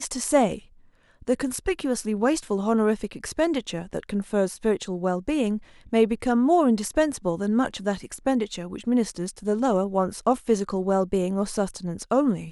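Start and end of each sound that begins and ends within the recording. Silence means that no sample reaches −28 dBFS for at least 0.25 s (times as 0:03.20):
0:01.28–0:05.57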